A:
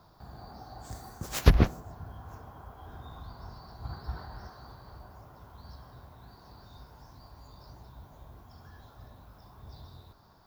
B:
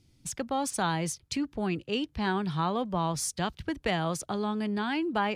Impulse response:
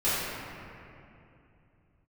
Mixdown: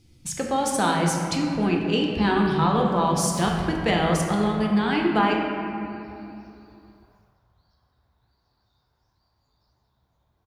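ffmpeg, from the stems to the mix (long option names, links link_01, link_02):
-filter_complex "[0:a]equalizer=frequency=2000:width_type=o:width=1:gain=5,equalizer=frequency=4000:width_type=o:width=1:gain=7,equalizer=frequency=8000:width_type=o:width=1:gain=4,adelay=2000,volume=-15.5dB,afade=type=out:start_time=7.15:duration=0.27:silence=0.421697,asplit=2[link_01][link_02];[link_02]volume=-15dB[link_03];[1:a]volume=2.5dB,asplit=3[link_04][link_05][link_06];[link_05]volume=-10.5dB[link_07];[link_06]apad=whole_len=549619[link_08];[link_01][link_08]sidechaincompress=threshold=-30dB:ratio=8:attack=16:release=1160[link_09];[2:a]atrim=start_sample=2205[link_10];[link_03][link_07]amix=inputs=2:normalize=0[link_11];[link_11][link_10]afir=irnorm=-1:irlink=0[link_12];[link_09][link_04][link_12]amix=inputs=3:normalize=0"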